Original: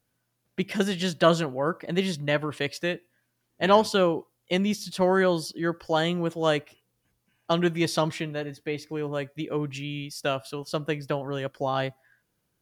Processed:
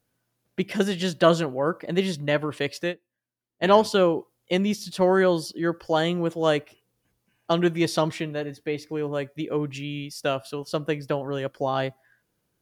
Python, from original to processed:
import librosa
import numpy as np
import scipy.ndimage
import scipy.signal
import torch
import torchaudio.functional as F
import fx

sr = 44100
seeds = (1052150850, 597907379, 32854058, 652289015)

y = fx.peak_eq(x, sr, hz=410.0, db=3.0, octaves=1.7)
y = fx.upward_expand(y, sr, threshold_db=-33.0, expansion=2.5, at=(2.84, 3.64))